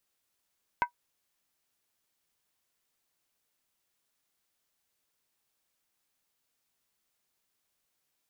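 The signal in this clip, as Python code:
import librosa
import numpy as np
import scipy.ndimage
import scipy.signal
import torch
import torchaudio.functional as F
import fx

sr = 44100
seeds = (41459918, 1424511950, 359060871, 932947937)

y = fx.strike_skin(sr, length_s=0.63, level_db=-18.5, hz=966.0, decay_s=0.1, tilt_db=6.0, modes=5)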